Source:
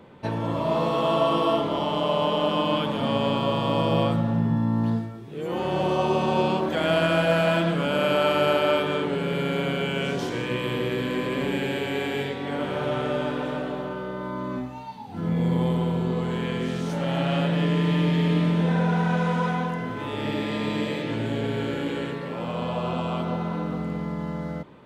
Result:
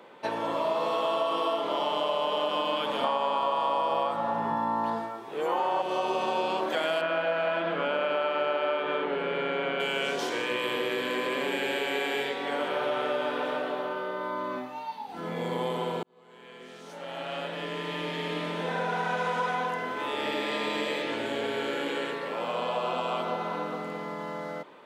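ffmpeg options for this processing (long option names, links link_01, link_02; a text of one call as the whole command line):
ffmpeg -i in.wav -filter_complex "[0:a]asettb=1/sr,asplit=3[link_01][link_02][link_03];[link_01]atrim=end=3.044[link_04];[link_02]atrim=start=3.04:end=5.82,asetpts=PTS-STARTPTS,afade=type=in:duration=0.004:curve=qsin,afade=type=out:start_time=2.776:duration=0.004:curve=qsin,equalizer=frequency=930:width_type=o:width=1.2:gain=12[link_05];[link_03]atrim=start=5.816[link_06];[link_04][link_05]acrossfade=duration=0.004:curve1=hsin:curve2=qsin[link_07];[link_07][link_06]acrossfade=duration=0.004:curve1=qsin:curve2=hsin,asettb=1/sr,asplit=3[link_08][link_09][link_10];[link_08]atrim=end=7.014[link_11];[link_09]atrim=start=7.01:end=9.8,asetpts=PTS-STARTPTS,afade=type=in:duration=0.004:curve=qsin,afade=type=out:start_time=2.786:duration=0.004:curve=qsin,lowpass=2600[link_12];[link_10]atrim=start=9.796[link_13];[link_11][link_12]acrossfade=duration=0.004:curve1=hsin:curve2=qsin[link_14];[link_14][link_13]acrossfade=duration=0.004:curve1=qsin:curve2=hsin,asettb=1/sr,asplit=3[link_15][link_16][link_17];[link_15]atrim=end=12.684[link_18];[link_16]atrim=start=12.68:end=15.09,asetpts=PTS-STARTPTS,afade=type=in:duration=0.004:curve=qsin,afade=type=out:start_time=2.406:duration=0.004:curve=qsin,equalizer=frequency=7300:width_type=o:width=0.69:gain=-6[link_19];[link_17]atrim=start=15.086[link_20];[link_18][link_19]acrossfade=duration=0.004:curve1=hsin:curve2=qsin[link_21];[link_21][link_20]acrossfade=duration=0.004:curve1=qsin:curve2=hsin,asplit=2[link_22][link_23];[link_22]atrim=end=16.03,asetpts=PTS-STARTPTS,afade=type=out:start_time=16.026:duration=0.004:curve=hsin[link_24];[link_23]atrim=start=16.03,asetpts=PTS-STARTPTS,afade=type=in:duration=3.47[link_25];[link_24][link_25]concat=n=2:v=0:a=1,highpass=460,acompressor=threshold=-27dB:ratio=6,volume=2.5dB" out.wav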